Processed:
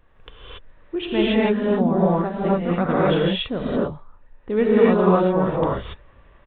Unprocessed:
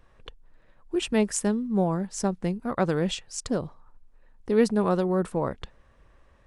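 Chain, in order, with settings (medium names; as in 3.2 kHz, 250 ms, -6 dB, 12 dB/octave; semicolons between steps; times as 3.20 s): resampled via 8 kHz; gated-style reverb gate 310 ms rising, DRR -7.5 dB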